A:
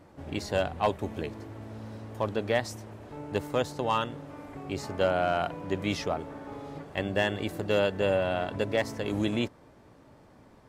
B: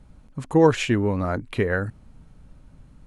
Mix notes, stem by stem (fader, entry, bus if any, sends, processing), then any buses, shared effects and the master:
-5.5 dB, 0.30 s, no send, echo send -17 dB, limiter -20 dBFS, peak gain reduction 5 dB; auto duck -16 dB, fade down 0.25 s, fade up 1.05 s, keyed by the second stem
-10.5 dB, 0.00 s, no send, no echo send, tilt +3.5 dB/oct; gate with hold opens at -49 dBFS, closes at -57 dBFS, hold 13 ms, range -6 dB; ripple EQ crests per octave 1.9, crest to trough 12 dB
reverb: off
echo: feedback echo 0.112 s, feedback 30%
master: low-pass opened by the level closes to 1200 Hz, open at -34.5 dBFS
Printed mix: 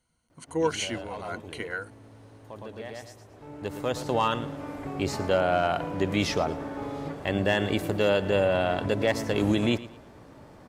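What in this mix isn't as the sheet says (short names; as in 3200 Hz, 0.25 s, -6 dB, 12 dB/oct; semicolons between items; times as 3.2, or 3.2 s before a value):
stem A -5.5 dB -> +6.0 dB; master: missing low-pass opened by the level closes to 1200 Hz, open at -34.5 dBFS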